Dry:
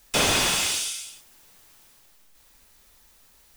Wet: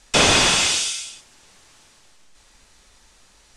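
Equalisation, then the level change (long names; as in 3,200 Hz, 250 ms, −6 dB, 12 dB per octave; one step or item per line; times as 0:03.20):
low-pass filter 8,500 Hz 24 dB per octave
+6.5 dB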